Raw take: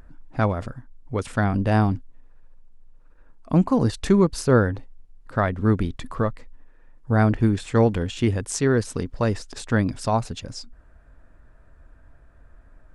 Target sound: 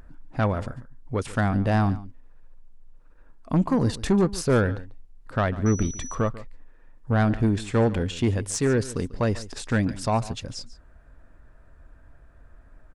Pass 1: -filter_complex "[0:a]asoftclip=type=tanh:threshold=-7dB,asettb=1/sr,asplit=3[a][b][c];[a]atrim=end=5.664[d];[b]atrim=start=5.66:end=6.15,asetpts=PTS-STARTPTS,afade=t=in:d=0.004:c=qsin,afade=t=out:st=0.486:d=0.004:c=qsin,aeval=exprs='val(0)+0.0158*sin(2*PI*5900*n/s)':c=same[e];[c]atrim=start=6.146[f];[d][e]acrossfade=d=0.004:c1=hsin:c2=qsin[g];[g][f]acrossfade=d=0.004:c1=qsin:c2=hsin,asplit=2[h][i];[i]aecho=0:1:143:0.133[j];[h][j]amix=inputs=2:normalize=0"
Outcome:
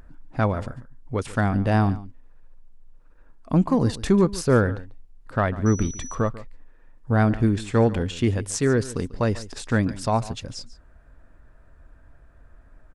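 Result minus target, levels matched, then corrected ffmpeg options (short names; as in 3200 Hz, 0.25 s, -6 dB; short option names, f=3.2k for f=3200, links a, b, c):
soft clip: distortion -10 dB
-filter_complex "[0:a]asoftclip=type=tanh:threshold=-14dB,asettb=1/sr,asplit=3[a][b][c];[a]atrim=end=5.664[d];[b]atrim=start=5.66:end=6.15,asetpts=PTS-STARTPTS,afade=t=in:d=0.004:c=qsin,afade=t=out:st=0.486:d=0.004:c=qsin,aeval=exprs='val(0)+0.0158*sin(2*PI*5900*n/s)':c=same[e];[c]atrim=start=6.146[f];[d][e]acrossfade=d=0.004:c1=hsin:c2=qsin[g];[g][f]acrossfade=d=0.004:c1=qsin:c2=hsin,asplit=2[h][i];[i]aecho=0:1:143:0.133[j];[h][j]amix=inputs=2:normalize=0"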